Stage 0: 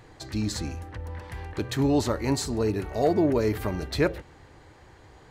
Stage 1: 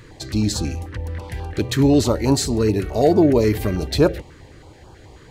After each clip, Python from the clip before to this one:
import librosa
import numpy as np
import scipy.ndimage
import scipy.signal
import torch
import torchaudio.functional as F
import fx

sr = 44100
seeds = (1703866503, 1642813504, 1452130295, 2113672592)

y = fx.filter_held_notch(x, sr, hz=9.3, low_hz=760.0, high_hz=2000.0)
y = F.gain(torch.from_numpy(y), 8.5).numpy()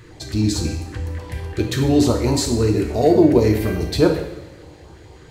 y = fx.rev_double_slope(x, sr, seeds[0], early_s=0.75, late_s=2.4, knee_db=-17, drr_db=2.0)
y = F.gain(torch.from_numpy(y), -2.0).numpy()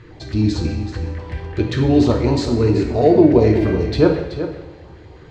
y = fx.air_absorb(x, sr, metres=170.0)
y = y + 10.0 ** (-11.0 / 20.0) * np.pad(y, (int(379 * sr / 1000.0), 0))[:len(y)]
y = F.gain(torch.from_numpy(y), 2.0).numpy()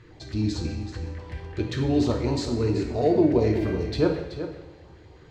y = fx.high_shelf(x, sr, hz=5500.0, db=7.5)
y = F.gain(torch.from_numpy(y), -8.5).numpy()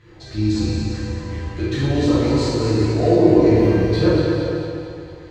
y = fx.echo_feedback(x, sr, ms=226, feedback_pct=50, wet_db=-6.0)
y = fx.rev_plate(y, sr, seeds[1], rt60_s=1.3, hf_ratio=0.8, predelay_ms=0, drr_db=-8.5)
y = F.gain(torch.from_numpy(y), -2.5).numpy()